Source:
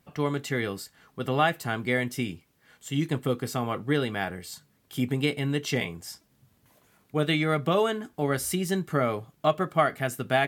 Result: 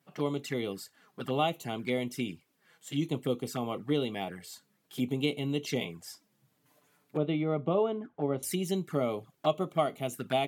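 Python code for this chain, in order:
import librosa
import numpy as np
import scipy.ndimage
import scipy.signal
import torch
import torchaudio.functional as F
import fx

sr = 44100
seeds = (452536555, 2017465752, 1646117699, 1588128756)

y = fx.lowpass(x, sr, hz=1600.0, slope=12, at=(7.17, 8.43))
y = fx.env_flanger(y, sr, rest_ms=7.3, full_db=-25.0)
y = scipy.signal.sosfilt(scipy.signal.butter(2, 160.0, 'highpass', fs=sr, output='sos'), y)
y = F.gain(torch.from_numpy(y), -2.0).numpy()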